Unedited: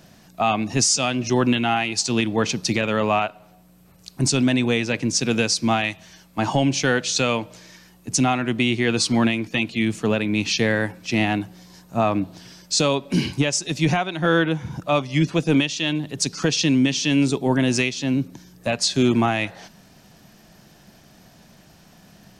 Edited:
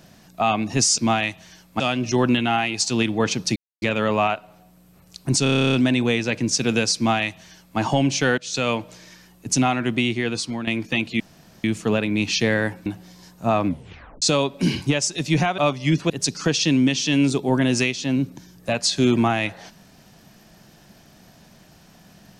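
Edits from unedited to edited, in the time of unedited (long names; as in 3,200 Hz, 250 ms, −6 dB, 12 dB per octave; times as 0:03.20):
0:02.74: splice in silence 0.26 s
0:04.35: stutter 0.03 s, 11 plays
0:05.59–0:06.41: duplicate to 0:00.98
0:07.00–0:07.33: fade in linear, from −17 dB
0:08.55–0:09.29: fade out, to −13.5 dB
0:09.82: splice in room tone 0.44 s
0:11.04–0:11.37: remove
0:12.17: tape stop 0.56 s
0:14.09–0:14.87: remove
0:15.39–0:16.08: remove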